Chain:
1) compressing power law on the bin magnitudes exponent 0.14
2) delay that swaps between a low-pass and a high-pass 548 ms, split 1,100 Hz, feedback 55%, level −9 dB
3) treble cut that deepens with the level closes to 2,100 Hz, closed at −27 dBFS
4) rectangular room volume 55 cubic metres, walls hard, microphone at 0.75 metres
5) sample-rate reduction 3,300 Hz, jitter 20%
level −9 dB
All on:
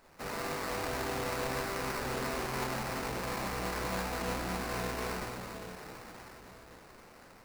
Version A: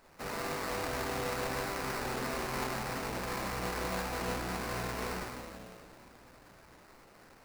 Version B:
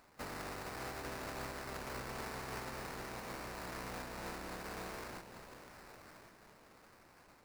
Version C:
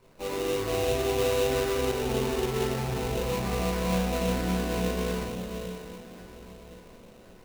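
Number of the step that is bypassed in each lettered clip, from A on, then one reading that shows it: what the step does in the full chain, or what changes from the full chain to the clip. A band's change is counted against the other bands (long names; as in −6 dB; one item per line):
2, change in momentary loudness spread −6 LU
4, change in crest factor +2.0 dB
1, 2 kHz band −6.5 dB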